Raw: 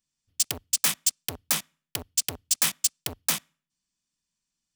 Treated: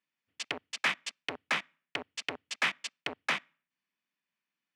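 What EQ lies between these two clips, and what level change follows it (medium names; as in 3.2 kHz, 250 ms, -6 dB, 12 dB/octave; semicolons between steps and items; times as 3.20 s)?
high-pass 270 Hz 12 dB/octave; resonant low-pass 2.2 kHz, resonance Q 1.9; 0.0 dB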